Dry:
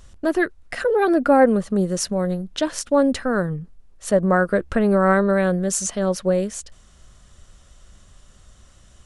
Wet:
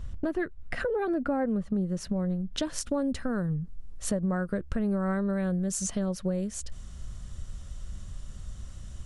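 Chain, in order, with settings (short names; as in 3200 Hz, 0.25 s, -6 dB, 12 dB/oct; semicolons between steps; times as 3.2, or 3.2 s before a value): tone controls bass +12 dB, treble -8 dB, from 2.52 s treble +2 dB; compressor 4:1, threshold -27 dBFS, peak gain reduction 16 dB; gain -1.5 dB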